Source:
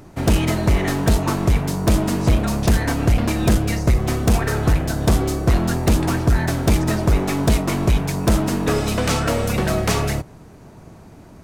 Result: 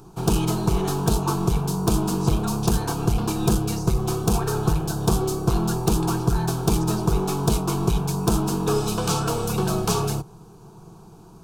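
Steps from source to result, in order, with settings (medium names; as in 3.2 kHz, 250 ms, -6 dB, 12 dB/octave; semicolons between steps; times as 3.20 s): static phaser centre 390 Hz, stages 8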